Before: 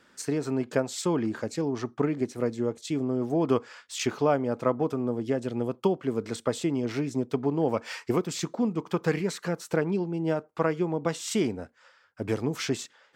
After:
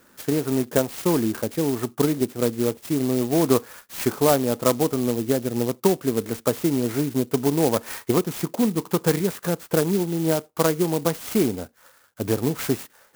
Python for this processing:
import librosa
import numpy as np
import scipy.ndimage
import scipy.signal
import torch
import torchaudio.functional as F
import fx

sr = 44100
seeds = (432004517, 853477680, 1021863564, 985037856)

y = fx.high_shelf(x, sr, hz=6100.0, db=-10.5)
y = fx.clock_jitter(y, sr, seeds[0], jitter_ms=0.089)
y = y * librosa.db_to_amplitude(5.5)